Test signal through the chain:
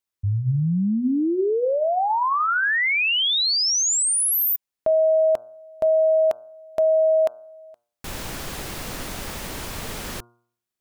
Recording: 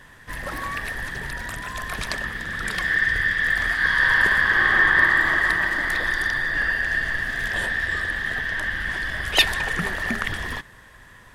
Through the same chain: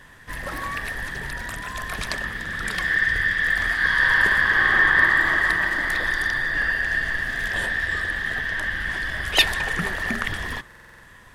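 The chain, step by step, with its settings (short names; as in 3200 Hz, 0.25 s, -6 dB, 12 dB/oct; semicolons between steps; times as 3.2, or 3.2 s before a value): de-hum 118.4 Hz, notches 13; stuck buffer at 10.66, samples 2048, times 7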